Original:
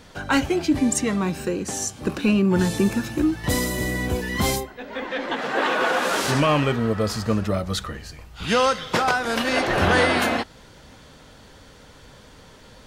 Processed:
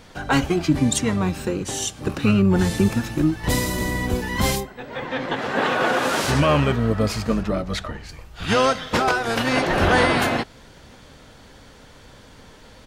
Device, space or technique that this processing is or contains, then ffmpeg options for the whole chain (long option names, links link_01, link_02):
octave pedal: -filter_complex "[0:a]asplit=2[link_01][link_02];[link_02]asetrate=22050,aresample=44100,atempo=2,volume=-5dB[link_03];[link_01][link_03]amix=inputs=2:normalize=0,asettb=1/sr,asplit=3[link_04][link_05][link_06];[link_04]atrim=end=7.434[link_07];[link_05]atrim=start=7.43:end=8.09,asetpts=PTS-STARTPTS,afade=type=in:duration=0.004:curve=qsin,afade=type=out:start_time=0.656:duration=0.004:curve=qsin,highshelf=frequency=7400:gain=-10.5[link_08];[link_06]atrim=start=8.086[link_09];[link_07][link_08]acrossfade=duration=0.004:curve1=hsin:curve2=qsin[link_10];[link_10][link_09]acrossfade=duration=0.004:curve1=qsin:curve2=hsin"